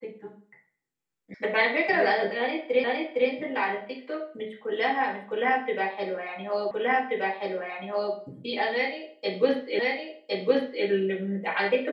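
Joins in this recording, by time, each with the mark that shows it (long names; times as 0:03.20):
0:01.34: cut off before it has died away
0:02.84: the same again, the last 0.46 s
0:06.71: the same again, the last 1.43 s
0:09.79: the same again, the last 1.06 s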